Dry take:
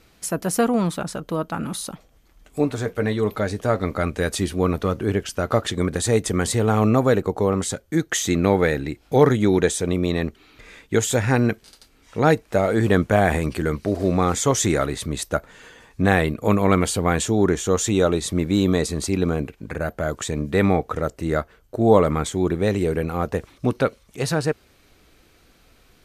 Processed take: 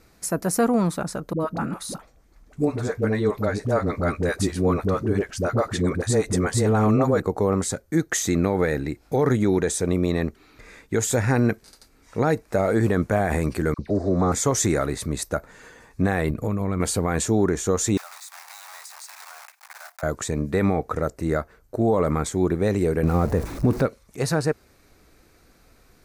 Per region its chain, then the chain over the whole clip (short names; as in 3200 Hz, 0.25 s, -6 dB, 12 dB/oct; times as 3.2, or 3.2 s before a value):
1.33–7.2 high shelf 12000 Hz -10.5 dB + dispersion highs, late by 71 ms, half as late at 440 Hz
13.74–14.32 dispersion lows, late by 45 ms, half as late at 1200 Hz + envelope phaser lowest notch 320 Hz, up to 2700 Hz, full sweep at -25.5 dBFS + air absorption 60 m
16.3–16.8 low shelf 200 Hz +10.5 dB + compressor 8:1, threshold -21 dBFS
17.97–20.03 block floating point 3-bit + steep high-pass 740 Hz 48 dB/oct + compressor 8:1, threshold -36 dBFS
23.03–23.86 zero-crossing step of -31 dBFS + low shelf 460 Hz +7.5 dB + mismatched tape noise reduction decoder only
whole clip: bell 3100 Hz -10 dB 0.53 oct; limiter -11 dBFS